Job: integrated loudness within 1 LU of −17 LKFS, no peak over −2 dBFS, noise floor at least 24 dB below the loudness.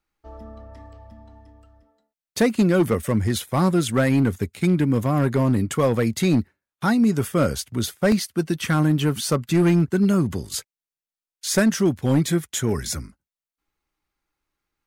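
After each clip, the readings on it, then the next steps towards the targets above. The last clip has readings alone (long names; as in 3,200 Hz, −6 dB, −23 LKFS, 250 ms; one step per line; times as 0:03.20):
share of clipped samples 1.2%; peaks flattened at −12.0 dBFS; number of dropouts 1; longest dropout 1.6 ms; integrated loudness −21.5 LKFS; sample peak −12.0 dBFS; target loudness −17.0 LKFS
→ clipped peaks rebuilt −12 dBFS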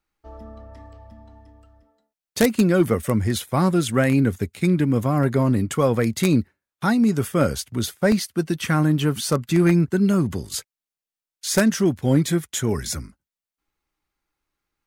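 share of clipped samples 0.0%; number of dropouts 1; longest dropout 1.6 ms
→ repair the gap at 0:08.12, 1.6 ms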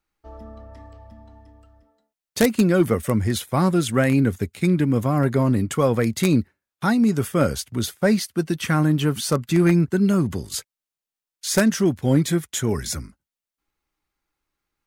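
number of dropouts 0; integrated loudness −21.0 LKFS; sample peak −3.0 dBFS; target loudness −17.0 LKFS
→ level +4 dB
brickwall limiter −2 dBFS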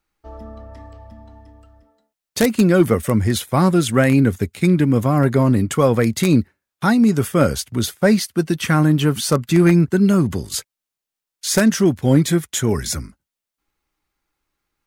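integrated loudness −17.0 LKFS; sample peak −2.0 dBFS; background noise floor −86 dBFS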